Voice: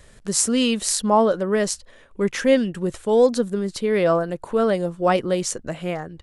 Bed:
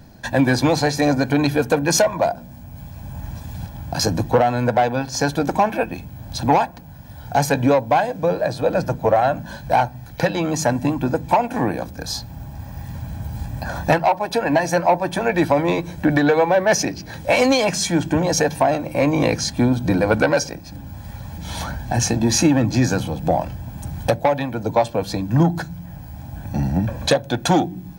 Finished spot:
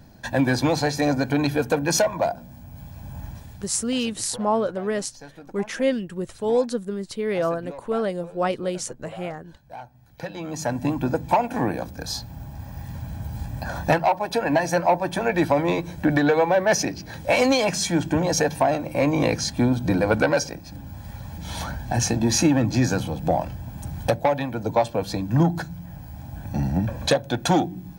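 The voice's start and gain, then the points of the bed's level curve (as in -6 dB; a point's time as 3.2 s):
3.35 s, -5.0 dB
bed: 3.24 s -4 dB
4.1 s -23.5 dB
9.69 s -23.5 dB
10.92 s -3 dB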